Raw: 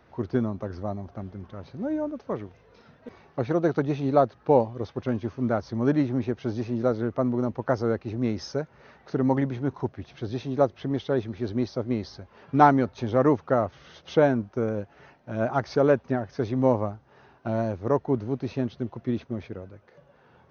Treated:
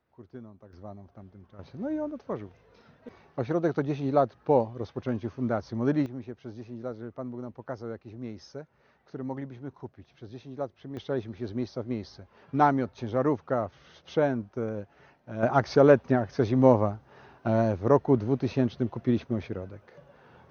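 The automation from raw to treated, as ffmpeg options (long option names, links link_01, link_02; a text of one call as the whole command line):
ffmpeg -i in.wav -af "asetnsamples=nb_out_samples=441:pad=0,asendcmd='0.73 volume volume -11.5dB;1.59 volume volume -3dB;6.06 volume volume -12dB;10.97 volume volume -5dB;15.43 volume volume 2.5dB',volume=-19dB" out.wav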